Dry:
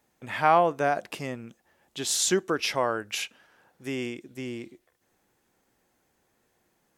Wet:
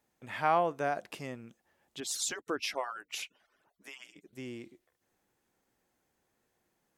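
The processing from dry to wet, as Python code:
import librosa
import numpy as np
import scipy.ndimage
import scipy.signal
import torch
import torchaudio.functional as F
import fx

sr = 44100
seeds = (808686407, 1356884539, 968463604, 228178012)

y = fx.hpss_only(x, sr, part='percussive', at=(2.0, 4.33))
y = F.gain(torch.from_numpy(y), -7.0).numpy()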